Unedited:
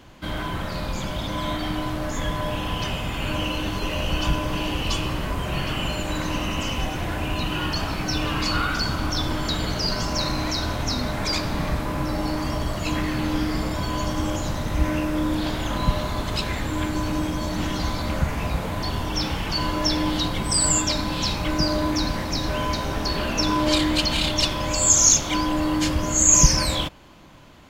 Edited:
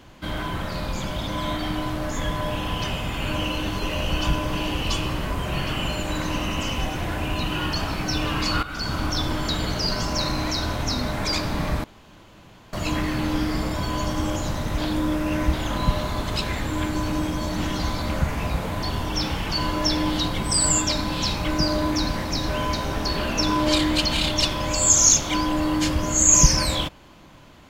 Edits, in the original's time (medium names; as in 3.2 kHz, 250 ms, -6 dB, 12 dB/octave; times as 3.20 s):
8.63–8.97 s: fade in, from -14.5 dB
11.84–12.73 s: room tone
14.78–15.53 s: reverse